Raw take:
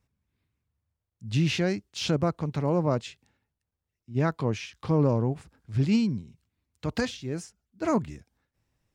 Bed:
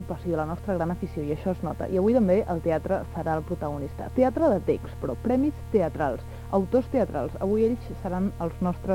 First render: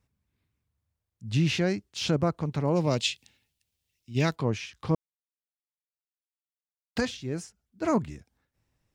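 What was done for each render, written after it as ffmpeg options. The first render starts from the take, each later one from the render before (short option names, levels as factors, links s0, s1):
-filter_complex "[0:a]asplit=3[s0][s1][s2];[s0]afade=t=out:st=2.75:d=0.02[s3];[s1]highshelf=f=2000:t=q:w=1.5:g=12,afade=t=in:st=2.75:d=0.02,afade=t=out:st=4.34:d=0.02[s4];[s2]afade=t=in:st=4.34:d=0.02[s5];[s3][s4][s5]amix=inputs=3:normalize=0,asplit=3[s6][s7][s8];[s6]atrim=end=4.95,asetpts=PTS-STARTPTS,afade=t=out:st=4.946:d=0.004:c=hsin[s9];[s7]atrim=start=4.95:end=6.96,asetpts=PTS-STARTPTS,volume=0[s10];[s8]atrim=start=6.96,asetpts=PTS-STARTPTS,afade=t=in:d=0.004:c=hsin[s11];[s9][s10][s11]concat=n=3:v=0:a=1"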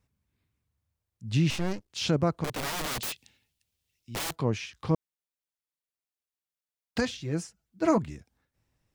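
-filter_complex "[0:a]asettb=1/sr,asplit=3[s0][s1][s2];[s0]atrim=end=1.504[s3];[s1]atrim=start=1.5:end=1.9,asetpts=PTS-STARTPTS,afade=t=in:d=0.004:c=qsin,afade=t=out:st=0.396:d=0.004:c=qsin,aeval=exprs='max(val(0),0)':c=same[s4];[s2]atrim=start=1.896[s5];[s3][s4]acrossfade=d=0.004:c1=hsin:c2=qsin[s6];[s6][s5]acrossfade=d=0.004:c1=qsin:c2=hsin,asettb=1/sr,asplit=3[s7][s8][s9];[s7]atrim=end=2.444[s10];[s8]atrim=start=2.44:end=4.31,asetpts=PTS-STARTPTS,afade=t=in:d=0.004:c=qsin,afade=t=out:st=1.866:d=0.004:c=qsin,aeval=exprs='(mod(25.1*val(0)+1,2)-1)/25.1':c=same[s11];[s9]atrim=start=4.306[s12];[s10][s11]acrossfade=d=0.004:c1=hsin:c2=qsin[s13];[s13][s12]acrossfade=d=0.004:c1=qsin:c2=hsin,asettb=1/sr,asplit=3[s14][s15][s16];[s14]atrim=end=7.204[s17];[s15]atrim=start=7.2:end=7.98,asetpts=PTS-STARTPTS,afade=t=in:d=0.004:c=qsin,afade=t=out:st=0.776:d=0.004:c=qsin,aecho=1:1:6.1:0.61,atrim=end_sample=34398[s18];[s16]atrim=start=7.976[s19];[s17][s18]acrossfade=d=0.004:c1=hsin:c2=qsin[s20];[s20][s19]acrossfade=d=0.004:c1=qsin:c2=hsin"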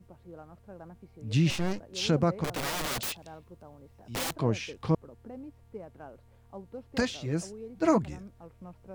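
-filter_complex "[1:a]volume=0.0944[s0];[0:a][s0]amix=inputs=2:normalize=0"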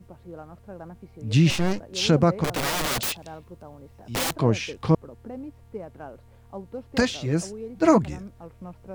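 -af "volume=2.11"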